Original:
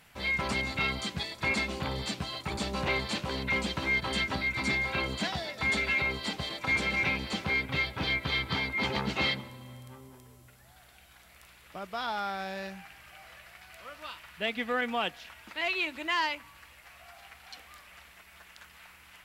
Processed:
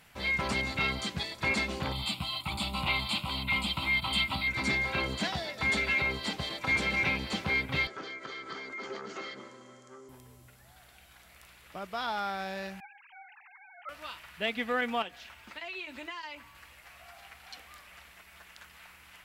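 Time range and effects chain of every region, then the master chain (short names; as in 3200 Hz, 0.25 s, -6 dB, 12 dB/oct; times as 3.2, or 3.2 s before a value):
1.92–4.48 high shelf 2100 Hz +8 dB + fixed phaser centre 1700 Hz, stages 6
7.87–10.09 compressor, threshold -35 dBFS + speaker cabinet 320–7400 Hz, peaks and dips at 380 Hz +8 dB, 890 Hz -8 dB, 1300 Hz +7 dB, 2600 Hz -10 dB, 3800 Hz -9 dB, 6700 Hz +8 dB
12.8–13.89 sine-wave speech + notch 650 Hz, Q 17
15.02–16.55 compressor, threshold -36 dBFS + notch comb 160 Hz
whole clip: dry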